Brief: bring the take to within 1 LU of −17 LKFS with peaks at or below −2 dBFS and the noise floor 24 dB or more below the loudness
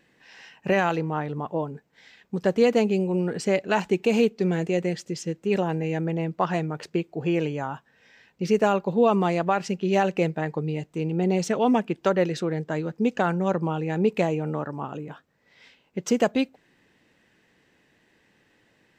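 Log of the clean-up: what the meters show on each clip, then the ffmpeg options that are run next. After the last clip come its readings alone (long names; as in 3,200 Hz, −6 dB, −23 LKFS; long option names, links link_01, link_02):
integrated loudness −25.5 LKFS; sample peak −9.0 dBFS; target loudness −17.0 LKFS
→ -af "volume=8.5dB,alimiter=limit=-2dB:level=0:latency=1"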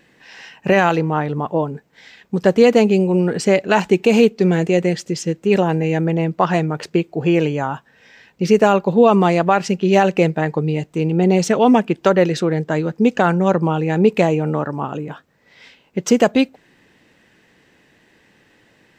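integrated loudness −17.0 LKFS; sample peak −2.0 dBFS; background noise floor −56 dBFS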